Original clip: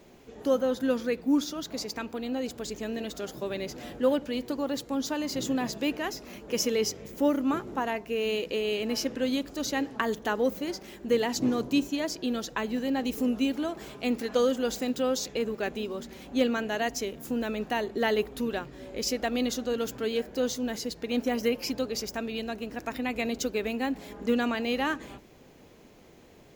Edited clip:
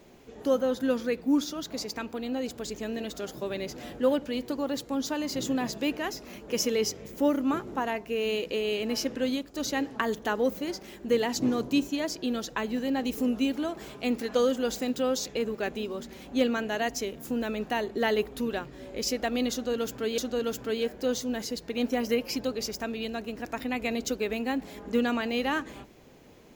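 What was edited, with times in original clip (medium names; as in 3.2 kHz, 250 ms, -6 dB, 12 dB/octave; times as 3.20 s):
9.29–9.54 s: fade out, to -11 dB
19.52–20.18 s: loop, 2 plays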